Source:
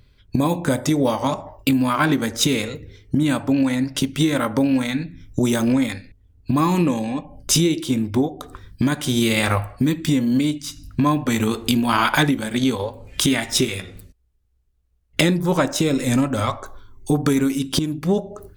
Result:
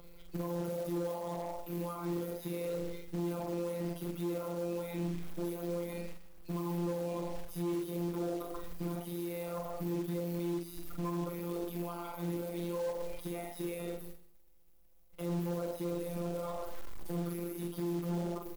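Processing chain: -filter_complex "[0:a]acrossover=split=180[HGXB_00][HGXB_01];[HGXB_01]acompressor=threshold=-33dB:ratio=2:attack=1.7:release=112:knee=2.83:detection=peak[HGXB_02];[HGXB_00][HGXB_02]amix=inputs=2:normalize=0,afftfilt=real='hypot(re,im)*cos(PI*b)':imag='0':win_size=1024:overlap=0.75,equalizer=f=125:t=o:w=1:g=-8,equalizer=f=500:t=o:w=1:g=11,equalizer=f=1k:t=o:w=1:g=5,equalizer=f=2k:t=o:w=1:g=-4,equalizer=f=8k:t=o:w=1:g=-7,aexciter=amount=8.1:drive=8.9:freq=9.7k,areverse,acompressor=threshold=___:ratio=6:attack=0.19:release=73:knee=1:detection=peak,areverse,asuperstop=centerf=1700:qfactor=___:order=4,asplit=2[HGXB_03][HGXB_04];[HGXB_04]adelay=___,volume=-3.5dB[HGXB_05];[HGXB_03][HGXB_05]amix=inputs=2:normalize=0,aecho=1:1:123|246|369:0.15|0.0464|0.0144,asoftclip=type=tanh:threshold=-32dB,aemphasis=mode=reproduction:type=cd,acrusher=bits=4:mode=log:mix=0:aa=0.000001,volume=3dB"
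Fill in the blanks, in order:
-34dB, 3.6, 46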